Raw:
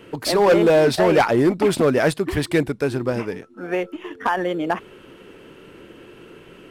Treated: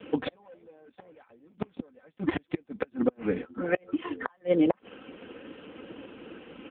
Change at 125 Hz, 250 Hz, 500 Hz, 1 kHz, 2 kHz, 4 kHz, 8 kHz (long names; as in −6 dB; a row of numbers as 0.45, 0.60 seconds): −15.0 dB, −8.5 dB, −14.0 dB, −17.5 dB, −13.5 dB, −17.0 dB, below −40 dB